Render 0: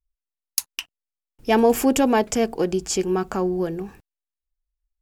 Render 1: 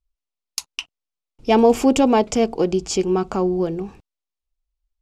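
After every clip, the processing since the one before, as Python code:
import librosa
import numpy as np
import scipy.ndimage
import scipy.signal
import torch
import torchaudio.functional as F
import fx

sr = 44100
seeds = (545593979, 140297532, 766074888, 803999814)

y = scipy.signal.sosfilt(scipy.signal.butter(2, 6200.0, 'lowpass', fs=sr, output='sos'), x)
y = fx.peak_eq(y, sr, hz=1700.0, db=-10.5, octaves=0.39)
y = F.gain(torch.from_numpy(y), 3.0).numpy()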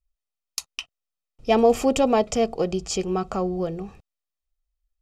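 y = x + 0.45 * np.pad(x, (int(1.6 * sr / 1000.0), 0))[:len(x)]
y = F.gain(torch.from_numpy(y), -3.5).numpy()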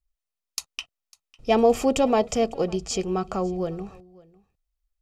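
y = x + 10.0 ** (-23.5 / 20.0) * np.pad(x, (int(551 * sr / 1000.0), 0))[:len(x)]
y = F.gain(torch.from_numpy(y), -1.0).numpy()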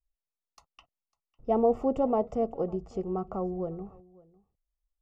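y = scipy.signal.savgol_filter(x, 65, 4, mode='constant')
y = F.gain(torch.from_numpy(y), -5.5).numpy()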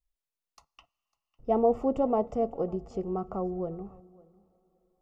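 y = fx.rev_double_slope(x, sr, seeds[0], early_s=0.22, late_s=4.5, knee_db=-20, drr_db=19.0)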